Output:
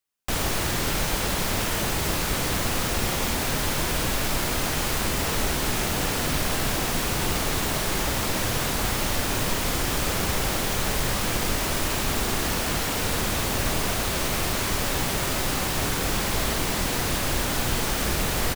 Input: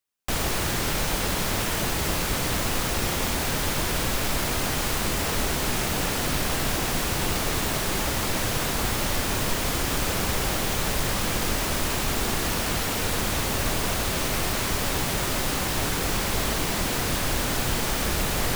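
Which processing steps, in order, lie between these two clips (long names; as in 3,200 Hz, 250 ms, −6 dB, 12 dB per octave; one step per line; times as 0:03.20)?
double-tracking delay 48 ms −10.5 dB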